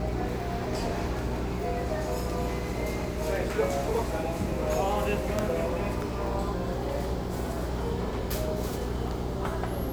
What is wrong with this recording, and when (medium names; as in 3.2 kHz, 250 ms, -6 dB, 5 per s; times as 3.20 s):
hum 60 Hz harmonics 7 -34 dBFS